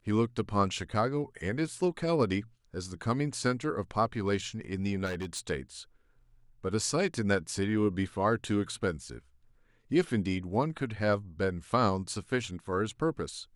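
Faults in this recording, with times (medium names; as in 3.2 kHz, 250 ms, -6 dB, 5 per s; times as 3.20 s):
5.05–5.40 s: clipped -31 dBFS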